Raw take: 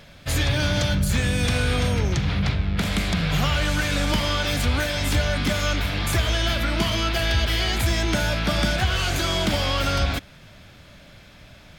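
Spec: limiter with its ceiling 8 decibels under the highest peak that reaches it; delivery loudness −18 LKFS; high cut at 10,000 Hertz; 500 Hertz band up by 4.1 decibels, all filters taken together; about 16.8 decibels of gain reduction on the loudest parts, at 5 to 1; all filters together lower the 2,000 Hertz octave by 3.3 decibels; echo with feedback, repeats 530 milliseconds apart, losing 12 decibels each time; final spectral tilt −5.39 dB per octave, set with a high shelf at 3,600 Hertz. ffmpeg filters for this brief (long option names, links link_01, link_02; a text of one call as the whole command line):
ffmpeg -i in.wav -af "lowpass=10000,equalizer=frequency=500:width_type=o:gain=5.5,equalizer=frequency=2000:width_type=o:gain=-3.5,highshelf=frequency=3600:gain=-5,acompressor=threshold=-37dB:ratio=5,alimiter=level_in=9.5dB:limit=-24dB:level=0:latency=1,volume=-9.5dB,aecho=1:1:530|1060|1590:0.251|0.0628|0.0157,volume=24.5dB" out.wav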